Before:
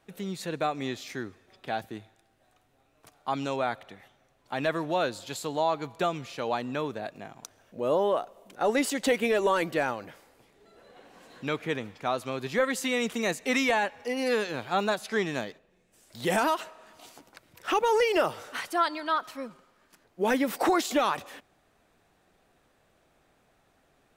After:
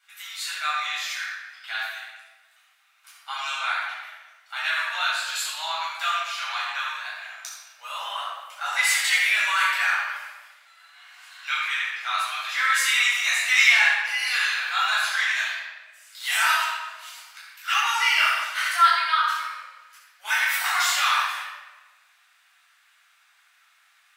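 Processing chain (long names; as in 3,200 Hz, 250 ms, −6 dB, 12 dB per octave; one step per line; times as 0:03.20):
inverse Chebyshev high-pass filter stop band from 390 Hz, stop band 60 dB
rectangular room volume 1,000 cubic metres, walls mixed, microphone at 7.3 metres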